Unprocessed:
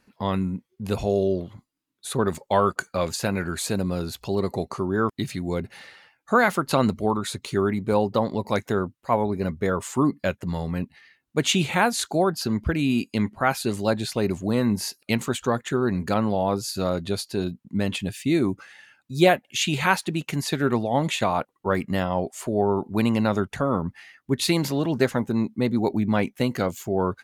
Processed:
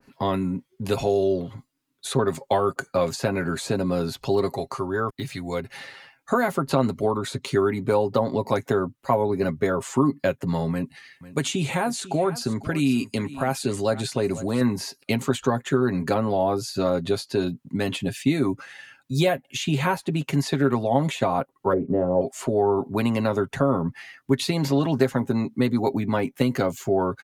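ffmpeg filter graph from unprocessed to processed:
-filter_complex "[0:a]asettb=1/sr,asplit=3[a][b][c];[a]atrim=end=4.534[d];[b]atrim=start=4.53:end=5.74,asetpts=PTS-STARTPTS,afade=t=in:d=0.004:c=qsin,afade=t=out:st=1.206:d=0.004:c=qsin,deesser=0.9,equalizer=f=220:t=o:w=2.8:g=-9.5[e];[c]atrim=start=5.736[f];[d][e]acrossfade=d=0.004:c1=hsin:c2=qsin[g];[g][f]acrossfade=d=0.004:c1=qsin:c2=hsin,asettb=1/sr,asplit=3[h][i][j];[h]atrim=end=10.714[k];[i]atrim=start=10.71:end=14.61,asetpts=PTS-STARTPTS,afade=t=in:d=0.004:c=qsin,afade=t=out:st=3.896:d=0.004:c=qsin,equalizer=f=8.8k:w=1:g=9,acompressor=threshold=-29dB:ratio=1.5:attack=3.2:release=140:knee=1:detection=peak,aecho=1:1:496:0.126,atrim=end_sample=171990[l];[j]atrim=start=14.606[m];[k][l]acrossfade=d=0.004:c1=hsin:c2=qsin[n];[n][m]acrossfade=d=0.004:c1=qsin:c2=hsin,asettb=1/sr,asplit=3[o][p][q];[o]atrim=end=21.734[r];[p]atrim=start=21.73:end=22.21,asetpts=PTS-STARTPTS,afade=t=in:d=0.004:c=qsin,afade=t=out:st=0.476:d=0.004:c=qsin,lowpass=f=460:t=q:w=3.4,asplit=2[s][t];[t]adelay=34,volume=-10dB[u];[s][u]amix=inputs=2:normalize=0,atrim=end_sample=21168[v];[q]atrim=start=22.206[w];[r][v]acrossfade=d=0.004:c1=hsin:c2=qsin[x];[x][w]acrossfade=d=0.004:c1=qsin:c2=hsin,acrossover=split=120|820|7900[y][z][aa][ab];[y]acompressor=threshold=-45dB:ratio=4[ac];[z]acompressor=threshold=-25dB:ratio=4[ad];[aa]acompressor=threshold=-34dB:ratio=4[ae];[ab]acompressor=threshold=-49dB:ratio=4[af];[ac][ad][ae][af]amix=inputs=4:normalize=0,aecho=1:1:7.4:0.51,adynamicequalizer=threshold=0.00631:dfrequency=1800:dqfactor=0.7:tfrequency=1800:tqfactor=0.7:attack=5:release=100:ratio=0.375:range=2:mode=cutabove:tftype=highshelf,volume=4.5dB"

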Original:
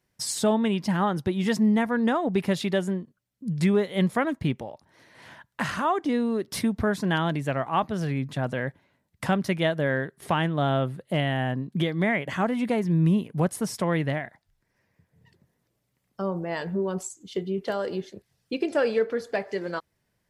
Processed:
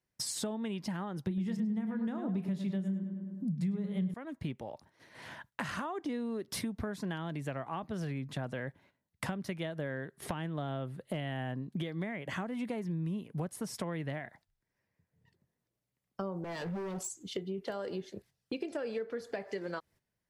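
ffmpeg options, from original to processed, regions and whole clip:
-filter_complex "[0:a]asettb=1/sr,asplit=3[a][b][c];[a]atrim=end=1.274[d];[b]atrim=start=1.27:end=4.14,asetpts=PTS-STARTPTS,afade=t=in:d=0.004:c=qsin,afade=t=out:st=2.866:d=0.004:c=qsin,equalizer=f=180:t=o:w=0.82:g=15,asplit=2[e][f];[f]adelay=31,volume=-12dB[g];[e][g]amix=inputs=2:normalize=0,atrim=end_sample=126567,asplit=2[h][i];[i]adelay=103,lowpass=f=2.8k:p=1,volume=-8dB,asplit=2[j][k];[k]adelay=103,lowpass=f=2.8k:p=1,volume=0.48,asplit=2[l][m];[m]adelay=103,lowpass=f=2.8k:p=1,volume=0.48,asplit=2[n][o];[o]adelay=103,lowpass=f=2.8k:p=1,volume=0.48,asplit=2[p][q];[q]adelay=103,lowpass=f=2.8k:p=1,volume=0.48,asplit=2[r][s];[s]adelay=103,lowpass=f=2.8k:p=1,volume=0.48[t];[h][j][l][n][p][r][t]amix=inputs=7:normalize=0,atrim=end_sample=126567[u];[c]atrim=start=4.136[v];[d][u]acrossfade=d=0.004:c1=hsin:c2=qsin[w];[w][v]acrossfade=d=0.004:c1=qsin:c2=hsin,asettb=1/sr,asplit=3[x][y][z];[x]atrim=end=16.444[aa];[y]atrim=start=16.44:end=17.31,asetpts=PTS-STARTPTS,afade=t=in:d=0.004:c=qsin,afade=t=out:st=0.866:d=0.004:c=qsin,acrossover=split=400|3000[ab][ac][ad];[ac]acompressor=threshold=-32dB:ratio=6:attack=3.2:release=140:knee=2.83:detection=peak[ae];[ab][ae][ad]amix=inputs=3:normalize=0,volume=31.5dB,asoftclip=hard,volume=-31.5dB[af];[z]atrim=start=17.306[ag];[aa][af]acrossfade=d=0.004:c1=hsin:c2=qsin[ah];[ah][ag]acrossfade=d=0.004:c1=qsin:c2=hsin,acrossover=split=450[ai][aj];[aj]acompressor=threshold=-26dB:ratio=6[ak];[ai][ak]amix=inputs=2:normalize=0,agate=range=-12dB:threshold=-55dB:ratio=16:detection=peak,acompressor=threshold=-35dB:ratio=5"

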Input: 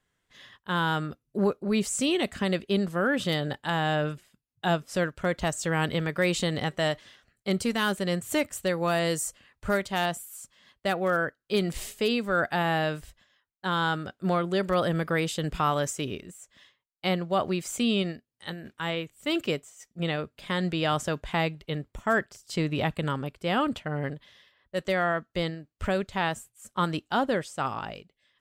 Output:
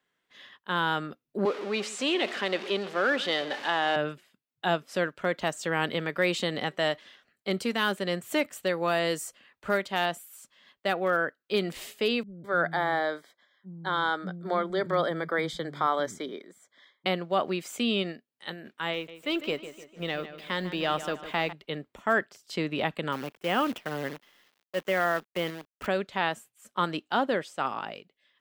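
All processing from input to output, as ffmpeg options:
-filter_complex "[0:a]asettb=1/sr,asplit=3[a][b][c];[a]atrim=end=1.454[d];[b]atrim=start=1.45:end=3.96,asetpts=PTS-STARTPTS,afade=t=in:d=0.004:c=qsin,afade=t=out:st=2.506:d=0.004:c=qsin,aeval=exprs='val(0)+0.5*0.0282*sgn(val(0))':c=same,highpass=350,lowpass=6.4k,aecho=1:1:132:0.141,atrim=end_sample=110691[e];[c]atrim=start=3.956[f];[d][e]acrossfade=d=0.004:c1=hsin:c2=qsin[g];[g][f]acrossfade=d=0.004:c1=qsin:c2=hsin,asettb=1/sr,asplit=3[h][i][j];[h]atrim=end=12.234[k];[i]atrim=start=12.23:end=17.06,asetpts=PTS-STARTPTS,afade=t=in:d=0.004:c=qsin,afade=t=out:st=4.826:d=0.004:c=qsin,asuperstop=centerf=2700:order=8:qfactor=3.6,highshelf=f=7.5k:g=-9.5,acrossover=split=220[l][m];[m]adelay=210[n];[l][n]amix=inputs=2:normalize=0,atrim=end_sample=213003[o];[j]atrim=start=17.056[p];[k][o]acrossfade=d=0.004:c1=hsin:c2=qsin[q];[q][p]acrossfade=d=0.004:c1=qsin:c2=hsin,asettb=1/sr,asplit=3[r][s][t];[r]atrim=end=18.934[u];[s]atrim=start=18.93:end=21.53,asetpts=PTS-STARTPTS,afade=t=in:d=0.004:c=qsin,afade=t=out:st=2.596:d=0.004:c=qsin,aeval=exprs='if(lt(val(0),0),0.708*val(0),val(0))':c=same,acrusher=bits=8:mix=0:aa=0.5,asplit=2[v][w];[w]adelay=150,lowpass=f=4.3k:p=1,volume=-12dB,asplit=2[x][y];[y]adelay=150,lowpass=f=4.3k:p=1,volume=0.47,asplit=2[z][aa];[aa]adelay=150,lowpass=f=4.3k:p=1,volume=0.47,asplit=2[ab][ac];[ac]adelay=150,lowpass=f=4.3k:p=1,volume=0.47,asplit=2[ad][ae];[ae]adelay=150,lowpass=f=4.3k:p=1,volume=0.47[af];[v][x][z][ab][ad][af]amix=inputs=6:normalize=0,atrim=end_sample=114660[ag];[t]atrim=start=21.526[ah];[u][ag]acrossfade=d=0.004:c1=hsin:c2=qsin[ai];[ai][ah]acrossfade=d=0.004:c1=qsin:c2=hsin,asettb=1/sr,asplit=3[aj][ak][al];[aj]atrim=end=23.124[am];[ak]atrim=start=23.12:end=25.87,asetpts=PTS-STARTPTS,afade=t=in:d=0.004:c=qsin,afade=t=out:st=2.746:d=0.004:c=qsin,asuperstop=centerf=4200:order=8:qfactor=2.3,acrusher=bits=7:dc=4:mix=0:aa=0.000001[an];[al]atrim=start=25.866[ao];[am][an]acrossfade=d=0.004:c1=hsin:c2=qsin[ap];[ap][ao]acrossfade=d=0.004:c1=qsin:c2=hsin,acrossover=split=180 4200:gain=0.0891 1 0.112[aq][ar][as];[aq][ar][as]amix=inputs=3:normalize=0,deesser=0.55,aemphasis=mode=production:type=50fm"

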